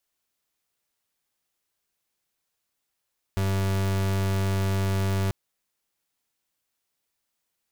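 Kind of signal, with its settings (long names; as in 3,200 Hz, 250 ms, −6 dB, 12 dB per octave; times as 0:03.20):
pulse wave 96.8 Hz, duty 37% −24.5 dBFS 1.94 s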